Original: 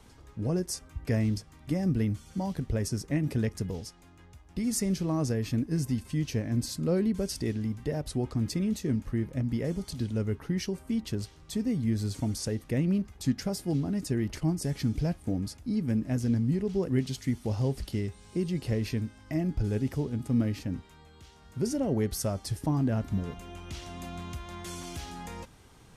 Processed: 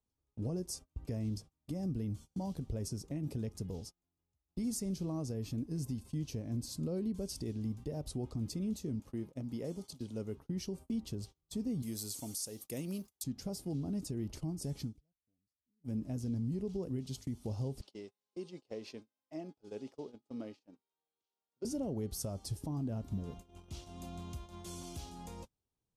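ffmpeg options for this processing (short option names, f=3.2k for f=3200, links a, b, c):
-filter_complex "[0:a]asettb=1/sr,asplit=3[a][b][c];[a]atrim=end=9.004[d];[b]atrim=start=9:end=10.37,asetpts=PTS-STARTPTS,afade=t=in:d=0.004:c=qsin,afade=t=out:st=1.366:d=0.004:c=qsin,highpass=f=300:p=1[e];[c]atrim=start=10.366[f];[d][e]acrossfade=d=0.004:c1=hsin:c2=qsin[g];[g][f]acrossfade=d=0.004:c1=qsin:c2=hsin,asettb=1/sr,asplit=3[h][i][j];[h]atrim=end=11.824[k];[i]atrim=start=11.82:end=13.24,asetpts=PTS-STARTPTS,afade=t=in:d=0.004:c=qsin,afade=t=out:st=1.416:d=0.004:c=qsin,aemphasis=mode=production:type=riaa[l];[j]atrim=start=13.236[m];[k][l]acrossfade=d=0.004:c1=hsin:c2=qsin[n];[n][m]acrossfade=d=0.004:c1=qsin:c2=hsin,asettb=1/sr,asplit=3[o][p][q];[o]atrim=end=17.814[r];[p]atrim=start=17.81:end=21.65,asetpts=PTS-STARTPTS,afade=t=in:d=0.004:c=qsin,afade=t=out:st=3.836:d=0.004:c=qsin,highpass=450,lowpass=5.5k[s];[q]atrim=start=21.646[t];[r][s]acrossfade=d=0.004:c1=hsin:c2=qsin[u];[u][t]acrossfade=d=0.004:c1=qsin:c2=hsin,asplit=3[v][w][x];[v]atrim=end=14.94,asetpts=PTS-STARTPTS,afade=t=out:st=14.8:d=0.14:silence=0.0891251[y];[w]atrim=start=14.94:end=15.8,asetpts=PTS-STARTPTS,volume=-21dB[z];[x]atrim=start=15.8,asetpts=PTS-STARTPTS,afade=t=in:d=0.14:silence=0.0891251[aa];[y][z][aa]concat=n=3:v=0:a=1,agate=range=-29dB:threshold=-41dB:ratio=16:detection=peak,equalizer=f=1.8k:t=o:w=1:g=-13,alimiter=limit=-24dB:level=0:latency=1:release=193,volume=-5dB"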